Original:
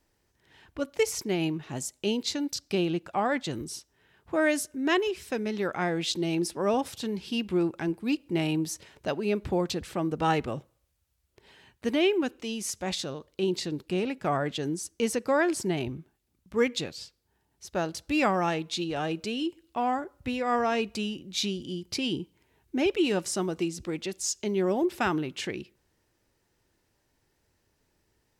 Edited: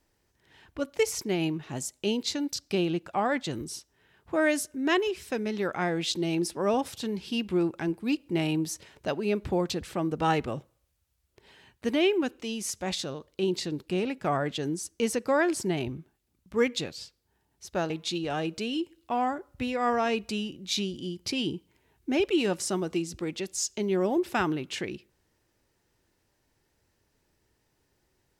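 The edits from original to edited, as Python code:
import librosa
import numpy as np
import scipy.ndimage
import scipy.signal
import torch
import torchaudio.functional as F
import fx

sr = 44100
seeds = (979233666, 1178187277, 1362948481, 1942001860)

y = fx.edit(x, sr, fx.cut(start_s=17.9, length_s=0.66), tone=tone)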